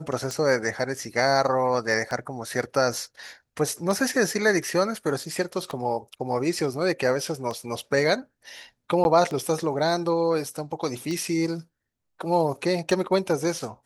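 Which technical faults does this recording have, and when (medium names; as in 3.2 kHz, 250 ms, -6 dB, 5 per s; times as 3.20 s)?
tick 33 1/3 rpm -18 dBFS
9.04–9.05 s: dropout 11 ms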